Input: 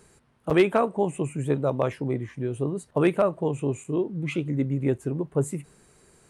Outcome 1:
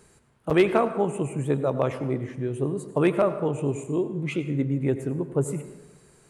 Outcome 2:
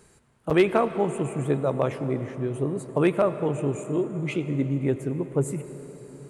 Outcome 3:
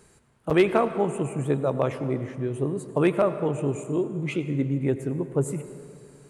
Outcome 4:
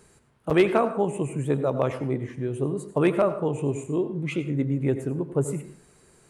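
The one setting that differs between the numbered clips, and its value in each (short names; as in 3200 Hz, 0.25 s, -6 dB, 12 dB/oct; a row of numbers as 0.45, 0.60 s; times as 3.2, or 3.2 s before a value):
plate-style reverb, RT60: 1.1, 5.1, 2.4, 0.51 s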